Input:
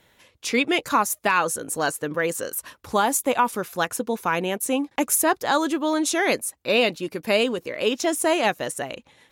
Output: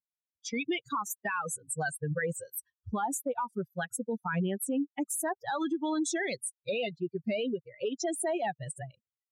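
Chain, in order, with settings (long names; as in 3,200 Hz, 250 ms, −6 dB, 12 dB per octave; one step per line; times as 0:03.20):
spectral dynamics exaggerated over time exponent 3
parametric band 4,900 Hz −12.5 dB 0.71 octaves
downward compressor, threshold −29 dBFS, peak gain reduction 10.5 dB
Chebyshev band-pass filter 110–8,400 Hz, order 2
automatic gain control gain up to 10.5 dB
brickwall limiter −24 dBFS, peak gain reduction 13 dB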